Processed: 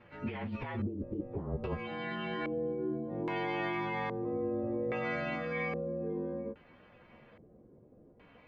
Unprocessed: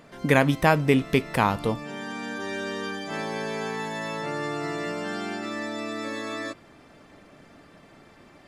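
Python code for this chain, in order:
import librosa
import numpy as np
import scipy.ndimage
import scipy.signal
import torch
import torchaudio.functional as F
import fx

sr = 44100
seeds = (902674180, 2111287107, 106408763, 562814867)

y = fx.partial_stretch(x, sr, pct=111)
y = fx.high_shelf(y, sr, hz=5700.0, db=-11.5)
y = fx.over_compress(y, sr, threshold_db=-29.0, ratio=-1.0)
y = fx.pitch_keep_formants(y, sr, semitones=-5.0)
y = fx.filter_lfo_lowpass(y, sr, shape='square', hz=0.61, low_hz=420.0, high_hz=2500.0, q=1.5)
y = F.gain(torch.from_numpy(y), -5.0).numpy()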